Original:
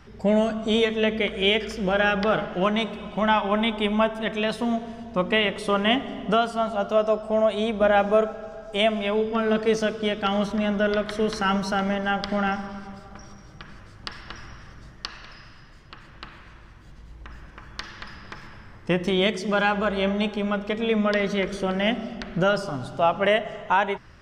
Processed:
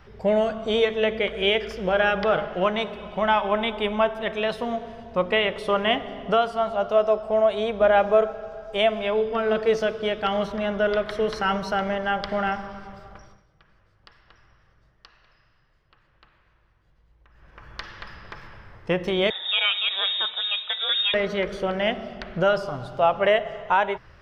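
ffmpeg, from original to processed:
-filter_complex "[0:a]asettb=1/sr,asplit=3[a][b][c];[a]atrim=end=19.304[d];[b]atrim=start=19.3:end=21.14,asetpts=PTS-STARTPTS,afade=t=in:d=0.004:c=qsin,afade=t=out:st=1.836:d=0.004:c=qsin,lowpass=f=3.3k:t=q:w=0.5098,lowpass=f=3.3k:t=q:w=0.6013,lowpass=f=3.3k:t=q:w=0.9,lowpass=f=3.3k:t=q:w=2.563,afreqshift=-3900[e];[c]atrim=start=21.136[f];[d][e]acrossfade=d=0.004:c1=hsin:c2=qsin[g];[g][f]acrossfade=d=0.004:c1=qsin:c2=hsin,asplit=3[h][i][j];[h]atrim=end=13.46,asetpts=PTS-STARTPTS,afade=t=out:st=13.08:d=0.38:silence=0.16788[k];[i]atrim=start=13.46:end=17.33,asetpts=PTS-STARTPTS,volume=-15.5dB[l];[j]atrim=start=17.33,asetpts=PTS-STARTPTS,afade=t=in:d=0.38:silence=0.16788[m];[k][l][m]concat=n=3:v=0:a=1,equalizer=f=250:t=o:w=1:g=-8,equalizer=f=500:t=o:w=1:g=4,equalizer=f=8k:t=o:w=1:g=-10"

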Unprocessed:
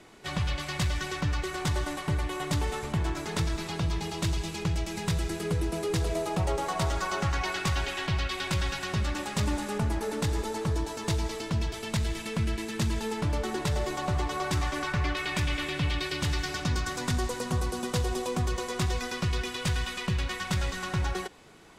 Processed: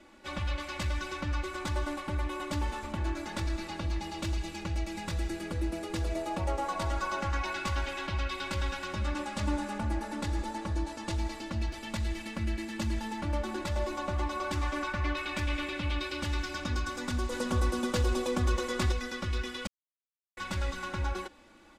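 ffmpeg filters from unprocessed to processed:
-filter_complex "[0:a]asettb=1/sr,asplit=3[a][b][c];[a]atrim=end=8.994[d];[b]atrim=start=8.99:end=11.17,asetpts=PTS-STARTPTS,afade=t=in:d=0.004:c=qsin,afade=t=out:st=2.176:d=0.004:c=qsin,lowpass=f=12k:w=0.5412,lowpass=f=12k:w=1.3066[e];[c]atrim=start=11.166[f];[d][e]acrossfade=d=0.004:c1=hsin:c2=qsin[g];[g][f]acrossfade=d=0.004:c1=qsin:c2=hsin,asplit=5[h][i][j][k][l];[h]atrim=end=17.322[m];[i]atrim=start=17.318:end=18.922,asetpts=PTS-STARTPTS,volume=4.5dB[n];[j]atrim=start=18.918:end=19.67,asetpts=PTS-STARTPTS,afade=t=out:st=0.748:d=0.004:c=hsin[o];[k]atrim=start=19.67:end=20.37,asetpts=PTS-STARTPTS,volume=0[p];[l]atrim=start=20.37,asetpts=PTS-STARTPTS,afade=t=in:d=0.004:c=hsin[q];[m][n]acrossfade=d=0.004:c1=hsin:c2=hsin[r];[o][p][q]concat=n=3:v=0:a=1[s];[r][s]acrossfade=d=0.004:c1=hsin:c2=hsin,highshelf=f=5.2k:g=-7,aecho=1:1:3.5:0.94,volume=-5.5dB"

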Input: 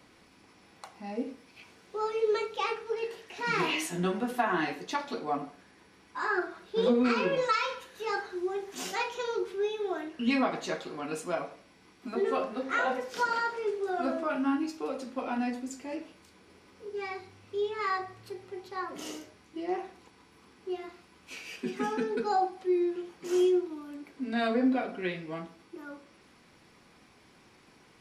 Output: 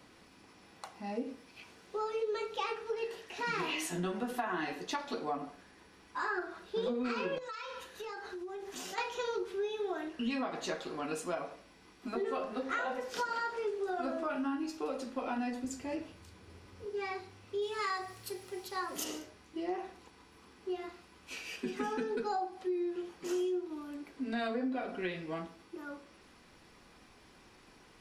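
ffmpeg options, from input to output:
-filter_complex "[0:a]asettb=1/sr,asplit=3[a][b][c];[a]atrim=end=7.384[d];[b]atrim=start=7.38:end=8.98,asetpts=PTS-STARTPTS,afade=t=in:d=0.004:c=qsin,afade=t=out:st=1.596:d=0.004:c=qsin,acompressor=threshold=-38dB:ratio=20:attack=3.2:release=140:knee=1:detection=peak[e];[c]atrim=start=8.976[f];[d][e]acrossfade=d=0.004:c1=hsin:c2=qsin[g];[g][f]acrossfade=d=0.004:c1=qsin:c2=hsin,asettb=1/sr,asplit=3[h][i][j];[h]atrim=end=15.644[k];[i]atrim=start=15.64:end=16.85,asetpts=PTS-STARTPTS,afade=t=in:d=0.004:c=qsin,afade=t=out:st=1.206:d=0.004:c=qsin,equalizer=f=100:w=1.5:g=15[l];[j]atrim=start=16.846[m];[k][l]acrossfade=d=0.004:c1=hsin:c2=qsin[n];[n][m]acrossfade=d=0.004:c1=qsin:c2=hsin,asplit=3[o][p][q];[o]afade=t=out:st=17.61:d=0.02[r];[p]aemphasis=mode=production:type=75fm,afade=t=in:st=17.61:d=0.02,afade=t=out:st=19.03:d=0.02[s];[q]afade=t=in:st=19.03:d=0.02[t];[r][s][t]amix=inputs=3:normalize=0,bandreject=f=2.2k:w=19,asubboost=boost=3:cutoff=62,acompressor=threshold=-32dB:ratio=5"

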